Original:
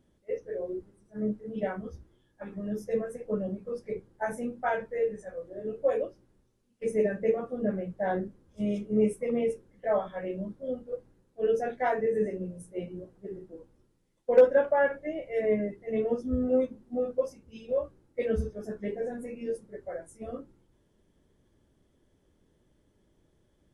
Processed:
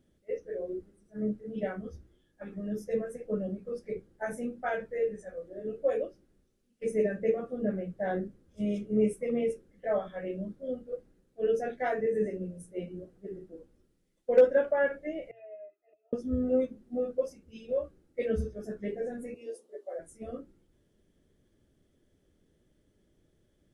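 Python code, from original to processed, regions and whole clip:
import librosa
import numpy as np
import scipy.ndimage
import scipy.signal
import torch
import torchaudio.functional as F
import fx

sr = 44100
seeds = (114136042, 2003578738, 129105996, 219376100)

y = fx.chain(x, sr, fx.highpass(hz=670.0, slope=24),
    fx.auto_swell(attack_ms=549.0),
    fx.octave_resonator(note='D#', decay_s=0.1), at=(15.31, 16.13))
y = fx.chain(y, sr, fx.highpass(hz=380.0, slope=24),
    fx.band_shelf(hz=1800.0, db=-10.0, octaves=1.0),
    fx.doubler(ms=12.0, db=-6), at=(19.34, 19.99))
y = fx.peak_eq(y, sr, hz=950.0, db=-9.5, octaves=0.48)
y = fx.hum_notches(y, sr, base_hz=60, count=2)
y = y * librosa.db_to_amplitude(-1.0)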